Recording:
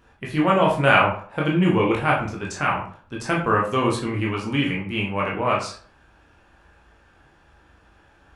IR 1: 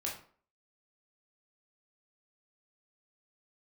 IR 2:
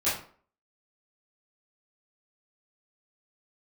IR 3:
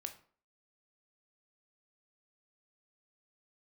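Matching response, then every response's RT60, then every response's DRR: 1; 0.45, 0.45, 0.50 s; -3.0, -13.0, 6.5 dB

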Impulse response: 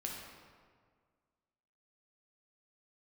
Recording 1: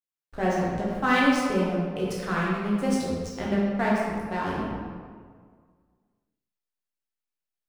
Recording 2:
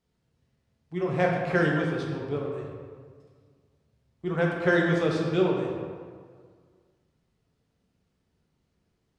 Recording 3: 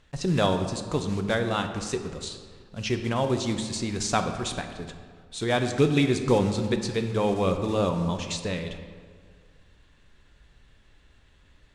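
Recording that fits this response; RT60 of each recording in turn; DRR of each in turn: 2; 1.8, 1.8, 1.8 s; -6.5, -1.5, 6.0 dB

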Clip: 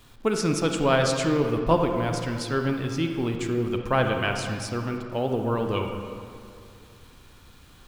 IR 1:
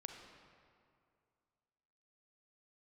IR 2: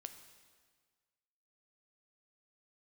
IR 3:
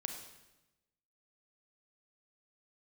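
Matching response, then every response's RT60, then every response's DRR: 1; 2.3, 1.6, 1.0 s; 3.5, 7.5, 4.0 dB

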